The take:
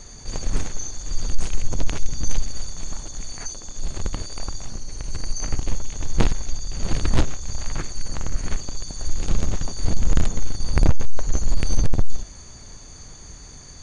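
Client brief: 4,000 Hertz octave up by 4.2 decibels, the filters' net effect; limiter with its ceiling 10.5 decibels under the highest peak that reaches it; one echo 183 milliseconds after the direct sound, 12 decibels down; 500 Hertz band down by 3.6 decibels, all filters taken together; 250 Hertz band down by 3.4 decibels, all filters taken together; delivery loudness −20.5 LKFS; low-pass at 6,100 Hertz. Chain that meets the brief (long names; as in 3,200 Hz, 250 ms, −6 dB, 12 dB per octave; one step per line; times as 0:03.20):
low-pass filter 6,100 Hz
parametric band 250 Hz −4 dB
parametric band 500 Hz −3.5 dB
parametric band 4,000 Hz +6 dB
brickwall limiter −15 dBFS
single-tap delay 183 ms −12 dB
level +12 dB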